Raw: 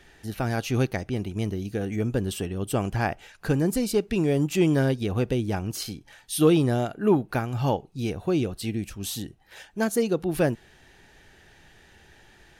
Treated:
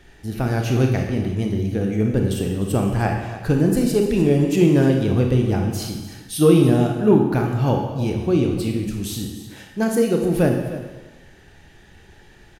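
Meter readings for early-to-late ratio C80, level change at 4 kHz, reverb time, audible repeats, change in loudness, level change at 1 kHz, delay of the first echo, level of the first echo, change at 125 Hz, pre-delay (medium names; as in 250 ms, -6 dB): 6.0 dB, +2.5 dB, 1.2 s, 1, +6.5 dB, +4.0 dB, 301 ms, -14.5 dB, +7.5 dB, 25 ms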